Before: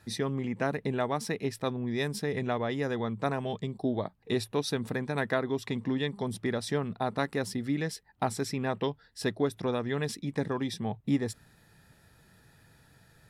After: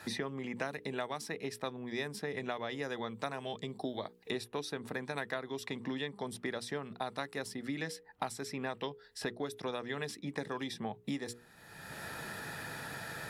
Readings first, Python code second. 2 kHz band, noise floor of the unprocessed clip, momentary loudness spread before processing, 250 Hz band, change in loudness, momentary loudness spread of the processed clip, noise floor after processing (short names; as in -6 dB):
-3.0 dB, -62 dBFS, 3 LU, -9.0 dB, -7.5 dB, 4 LU, -60 dBFS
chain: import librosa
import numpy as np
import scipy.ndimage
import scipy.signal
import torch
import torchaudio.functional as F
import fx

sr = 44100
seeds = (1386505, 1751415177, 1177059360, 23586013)

y = fx.low_shelf(x, sr, hz=320.0, db=-10.0)
y = fx.hum_notches(y, sr, base_hz=60, count=8)
y = fx.band_squash(y, sr, depth_pct=100)
y = y * 10.0 ** (-4.5 / 20.0)